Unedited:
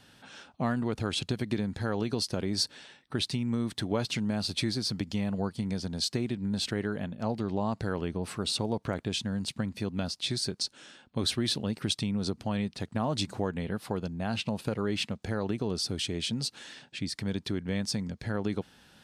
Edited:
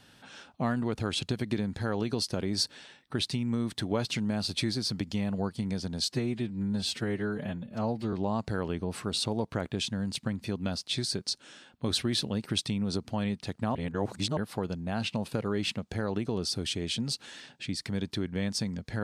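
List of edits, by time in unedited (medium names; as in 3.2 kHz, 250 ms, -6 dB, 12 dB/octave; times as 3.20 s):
6.12–7.46 s: stretch 1.5×
13.08–13.70 s: reverse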